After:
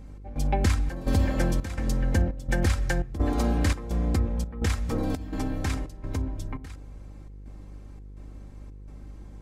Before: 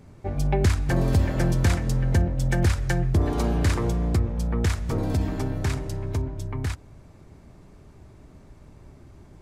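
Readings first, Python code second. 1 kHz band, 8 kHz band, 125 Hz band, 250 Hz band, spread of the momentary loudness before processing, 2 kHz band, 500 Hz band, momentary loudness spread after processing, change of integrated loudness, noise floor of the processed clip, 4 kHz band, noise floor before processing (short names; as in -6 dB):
-1.5 dB, -2.0 dB, -5.0 dB, -2.0 dB, 8 LU, -1.5 dB, -3.5 dB, 21 LU, -3.0 dB, -44 dBFS, -2.0 dB, -50 dBFS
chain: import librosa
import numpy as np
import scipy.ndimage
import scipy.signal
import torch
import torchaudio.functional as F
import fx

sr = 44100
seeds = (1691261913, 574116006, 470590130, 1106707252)

y = x + 0.54 * np.pad(x, (int(3.8 * sr / 1000.0), 0))[:len(x)]
y = fx.step_gate(y, sr, bpm=169, pattern='xx..xxxx', floor_db=-12.0, edge_ms=4.5)
y = fx.dmg_buzz(y, sr, base_hz=50.0, harmonics=10, level_db=-41.0, tilt_db=-9, odd_only=False)
y = F.gain(torch.from_numpy(y), -2.0).numpy()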